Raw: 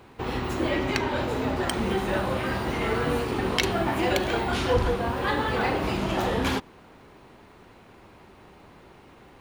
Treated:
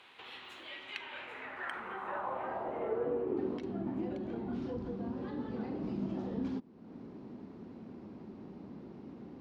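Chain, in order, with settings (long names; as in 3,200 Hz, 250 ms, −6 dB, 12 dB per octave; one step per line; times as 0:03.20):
parametric band 5,200 Hz −11.5 dB 1.2 octaves, from 0:03.37 +6.5 dB, from 0:04.62 +14 dB
downward compressor 2.5 to 1, threshold −45 dBFS, peak gain reduction 19 dB
band-pass filter sweep 3,500 Hz → 230 Hz, 0:00.86–0:03.80
level +11 dB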